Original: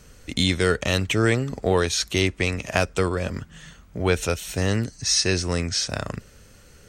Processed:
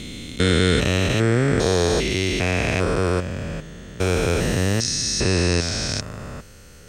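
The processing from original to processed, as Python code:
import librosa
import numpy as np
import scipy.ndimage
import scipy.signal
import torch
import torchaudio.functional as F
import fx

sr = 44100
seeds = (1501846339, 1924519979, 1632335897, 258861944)

y = fx.spec_steps(x, sr, hold_ms=400)
y = y * 10.0 ** (6.5 / 20.0)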